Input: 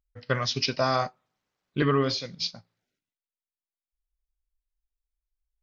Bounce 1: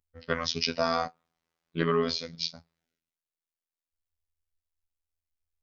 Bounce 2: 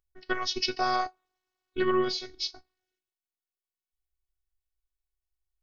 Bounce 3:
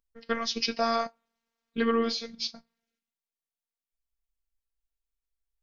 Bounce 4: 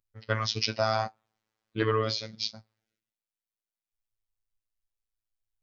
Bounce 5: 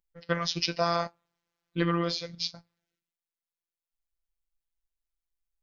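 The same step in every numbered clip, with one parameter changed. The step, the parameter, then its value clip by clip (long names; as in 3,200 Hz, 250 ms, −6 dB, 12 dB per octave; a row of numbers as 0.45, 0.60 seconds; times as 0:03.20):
phases set to zero, frequency: 83, 370, 230, 110, 170 Hertz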